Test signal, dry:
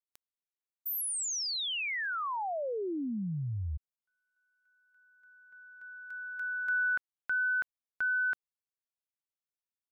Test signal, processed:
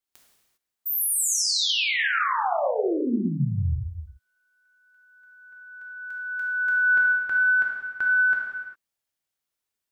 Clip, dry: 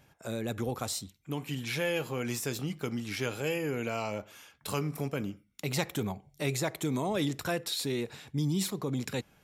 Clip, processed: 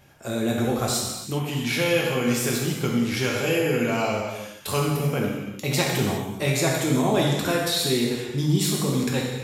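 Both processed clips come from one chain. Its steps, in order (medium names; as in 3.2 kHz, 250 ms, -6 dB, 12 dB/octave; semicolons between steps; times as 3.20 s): gated-style reverb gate 430 ms falling, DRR -2.5 dB; trim +5.5 dB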